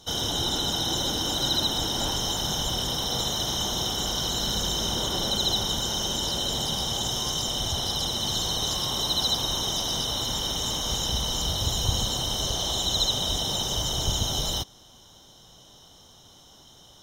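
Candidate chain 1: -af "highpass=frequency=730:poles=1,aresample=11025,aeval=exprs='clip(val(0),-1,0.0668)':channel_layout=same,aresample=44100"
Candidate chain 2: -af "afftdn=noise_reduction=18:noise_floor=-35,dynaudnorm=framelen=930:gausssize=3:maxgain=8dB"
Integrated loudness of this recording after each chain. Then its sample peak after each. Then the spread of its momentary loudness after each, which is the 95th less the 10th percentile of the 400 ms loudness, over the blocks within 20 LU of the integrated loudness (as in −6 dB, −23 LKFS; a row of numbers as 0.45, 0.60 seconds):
−27.5, −18.5 LKFS; −14.5, −4.0 dBFS; 4, 4 LU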